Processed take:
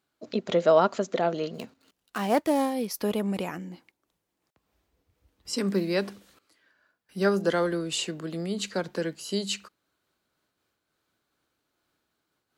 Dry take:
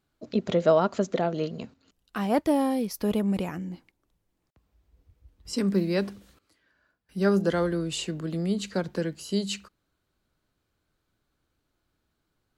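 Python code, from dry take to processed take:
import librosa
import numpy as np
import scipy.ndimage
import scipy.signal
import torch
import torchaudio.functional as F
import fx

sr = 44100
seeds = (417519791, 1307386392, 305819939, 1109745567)

y = fx.dead_time(x, sr, dead_ms=0.064, at=(1.53, 2.72), fade=0.02)
y = fx.highpass(y, sr, hz=360.0, slope=6)
y = fx.am_noise(y, sr, seeds[0], hz=5.7, depth_pct=55)
y = y * librosa.db_to_amplitude(5.5)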